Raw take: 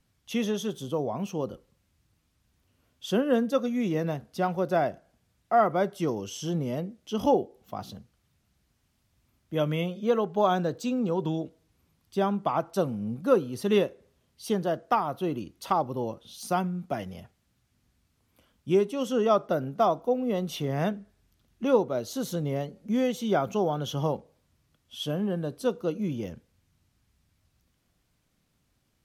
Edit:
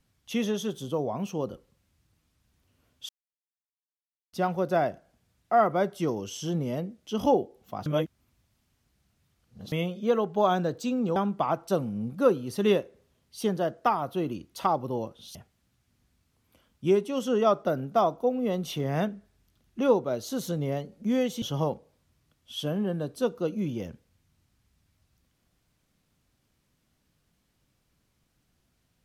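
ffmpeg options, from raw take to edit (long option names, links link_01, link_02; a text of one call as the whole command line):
ffmpeg -i in.wav -filter_complex "[0:a]asplit=8[link_01][link_02][link_03][link_04][link_05][link_06][link_07][link_08];[link_01]atrim=end=3.09,asetpts=PTS-STARTPTS,afade=type=out:start_time=3.086:duration=0.004:curve=hsin[link_09];[link_02]atrim=start=3.09:end=4.33,asetpts=PTS-STARTPTS,volume=0[link_10];[link_03]atrim=start=4.33:end=7.862,asetpts=PTS-STARTPTS,afade=type=in:duration=0.004:curve=hsin[link_11];[link_04]atrim=start=7.858:end=9.722,asetpts=PTS-STARTPTS,areverse[link_12];[link_05]atrim=start=9.718:end=11.162[link_13];[link_06]atrim=start=12.218:end=16.412[link_14];[link_07]atrim=start=17.188:end=23.262[link_15];[link_08]atrim=start=23.848[link_16];[link_09][link_10][link_11]concat=n=3:v=0:a=1[link_17];[link_17][link_12]acrossfade=duration=0.004:curve1=hsin:curve2=hsin[link_18];[link_18][link_13]acrossfade=duration=0.004:curve1=hsin:curve2=hsin[link_19];[link_19][link_14]acrossfade=duration=0.004:curve1=hsin:curve2=hsin[link_20];[link_20][link_15]acrossfade=duration=0.004:curve1=hsin:curve2=hsin[link_21];[link_21][link_16]acrossfade=duration=0.004:curve1=hsin:curve2=hsin" out.wav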